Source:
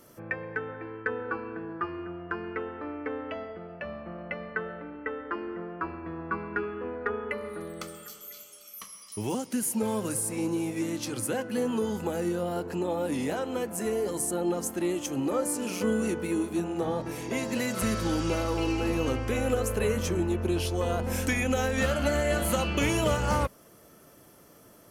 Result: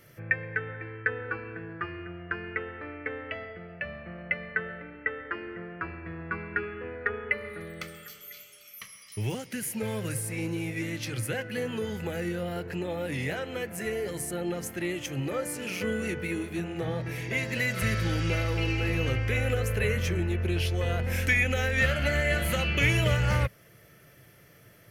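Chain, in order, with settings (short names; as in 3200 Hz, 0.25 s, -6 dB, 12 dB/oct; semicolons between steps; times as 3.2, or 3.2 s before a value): graphic EQ 125/250/1000/2000/8000 Hz +10/-9/-10/+11/-7 dB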